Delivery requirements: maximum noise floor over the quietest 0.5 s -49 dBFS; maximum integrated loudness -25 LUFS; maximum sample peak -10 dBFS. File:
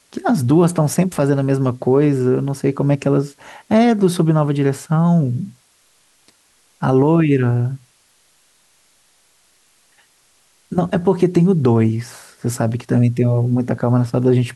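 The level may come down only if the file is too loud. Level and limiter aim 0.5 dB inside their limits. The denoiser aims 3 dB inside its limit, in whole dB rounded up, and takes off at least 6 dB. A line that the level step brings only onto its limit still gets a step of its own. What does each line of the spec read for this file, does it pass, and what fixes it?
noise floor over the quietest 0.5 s -57 dBFS: OK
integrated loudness -17.0 LUFS: fail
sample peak -4.5 dBFS: fail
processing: gain -8.5 dB

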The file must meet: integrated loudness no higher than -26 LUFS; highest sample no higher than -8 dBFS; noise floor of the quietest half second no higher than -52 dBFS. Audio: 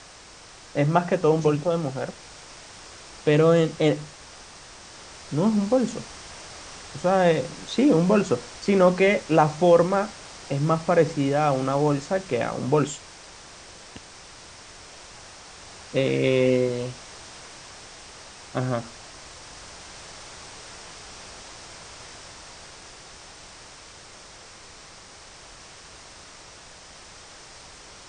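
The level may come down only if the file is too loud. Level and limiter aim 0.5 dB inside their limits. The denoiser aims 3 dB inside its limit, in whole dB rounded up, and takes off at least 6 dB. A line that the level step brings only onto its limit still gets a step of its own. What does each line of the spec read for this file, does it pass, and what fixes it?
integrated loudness -22.5 LUFS: fail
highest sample -5.0 dBFS: fail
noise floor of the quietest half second -47 dBFS: fail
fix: denoiser 6 dB, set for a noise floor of -47 dBFS; gain -4 dB

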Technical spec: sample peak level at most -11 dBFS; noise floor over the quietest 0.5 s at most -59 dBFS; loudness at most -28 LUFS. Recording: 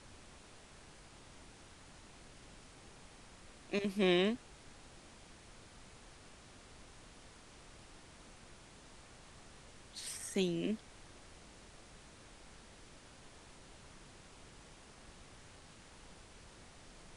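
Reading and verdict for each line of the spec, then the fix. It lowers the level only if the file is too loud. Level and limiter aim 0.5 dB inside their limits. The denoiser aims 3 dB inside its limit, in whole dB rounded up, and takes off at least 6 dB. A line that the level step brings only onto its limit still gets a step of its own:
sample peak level -20.0 dBFS: OK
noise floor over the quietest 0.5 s -57 dBFS: fail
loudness -36.0 LUFS: OK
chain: denoiser 6 dB, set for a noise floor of -57 dBFS

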